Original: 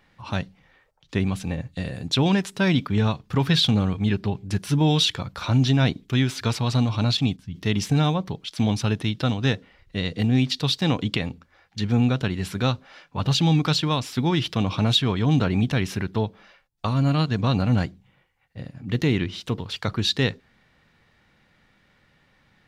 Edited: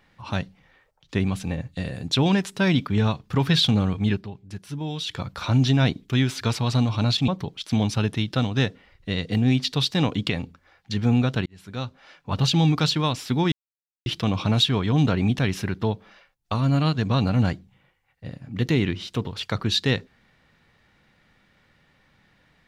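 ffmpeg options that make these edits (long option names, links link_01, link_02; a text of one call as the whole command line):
ffmpeg -i in.wav -filter_complex "[0:a]asplit=6[link_01][link_02][link_03][link_04][link_05][link_06];[link_01]atrim=end=4.27,asetpts=PTS-STARTPTS,afade=type=out:start_time=4.12:duration=0.15:silence=0.281838[link_07];[link_02]atrim=start=4.27:end=5.05,asetpts=PTS-STARTPTS,volume=-11dB[link_08];[link_03]atrim=start=5.05:end=7.282,asetpts=PTS-STARTPTS,afade=type=in:duration=0.15:silence=0.281838[link_09];[link_04]atrim=start=8.148:end=12.33,asetpts=PTS-STARTPTS,afade=type=out:start_time=4.178:duration=0.004:curve=hsin[link_10];[link_05]atrim=start=12.33:end=14.39,asetpts=PTS-STARTPTS,afade=type=in:duration=0.87,afade=type=out:start_time=2.056:duration=0.004:curve=hsin,apad=pad_dur=0.54[link_11];[link_06]atrim=start=14.39,asetpts=PTS-STARTPTS,afade=type=in:duration=0.004:curve=hsin[link_12];[link_07][link_08][link_09]concat=n=3:v=0:a=1[link_13];[link_10][link_11][link_12]concat=n=3:v=0:a=1[link_14];[link_13][link_14]acrossfade=duration=0.004:curve1=hsin:curve2=hsin" out.wav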